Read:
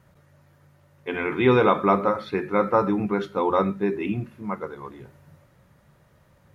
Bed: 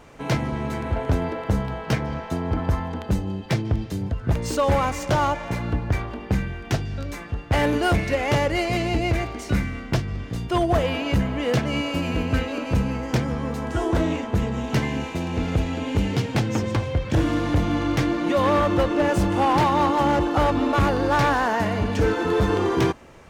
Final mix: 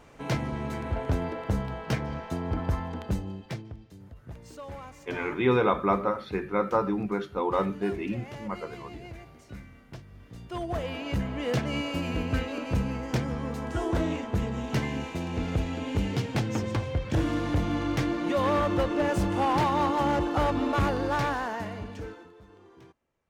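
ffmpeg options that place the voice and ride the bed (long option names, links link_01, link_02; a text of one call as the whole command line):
ffmpeg -i stem1.wav -i stem2.wav -filter_complex "[0:a]adelay=4000,volume=-5dB[link_01];[1:a]volume=10dB,afade=type=out:start_time=3.05:duration=0.7:silence=0.16788,afade=type=in:start_time=10.12:duration=1.48:silence=0.16788,afade=type=out:start_time=20.85:duration=1.47:silence=0.0446684[link_02];[link_01][link_02]amix=inputs=2:normalize=0" out.wav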